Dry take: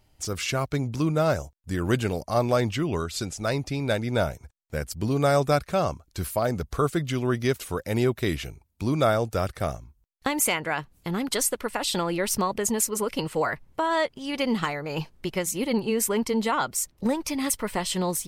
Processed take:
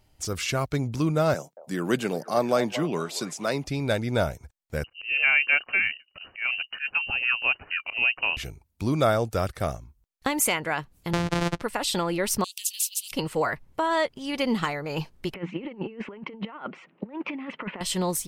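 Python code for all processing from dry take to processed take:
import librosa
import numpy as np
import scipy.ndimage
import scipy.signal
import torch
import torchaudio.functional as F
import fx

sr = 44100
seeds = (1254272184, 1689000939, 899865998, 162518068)

y = fx.chain(x, sr, fx.steep_highpass(hz=150.0, slope=36),
    fx.echo_stepped(ms=228, hz=670.0, octaves=0.7, feedback_pct=70, wet_db=-10.0), at=(1.34, 3.64))
y = fx.chain(y, sr, fx.low_shelf(hz=69.0, db=-9.0),
    fx.auto_swell(attack_ms=127.0),
    fx.freq_invert(carrier_hz=2900), at=(4.84, 8.37))
y = fx.chain(y, sr, fx.sample_sort(block=256),
    fx.air_absorb(metres=68.0),
    fx.band_squash(depth_pct=100), at=(11.13, 11.62))
y = fx.chain(y, sr, fx.cheby_ripple_highpass(hz=2700.0, ripple_db=3),
    fx.spectral_comp(ratio=2.0), at=(12.44, 13.12))
y = fx.chain(y, sr, fx.cheby1_bandpass(low_hz=170.0, high_hz=2800.0, order=4),
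    fx.over_compress(threshold_db=-33.0, ratio=-0.5), at=(15.34, 17.81))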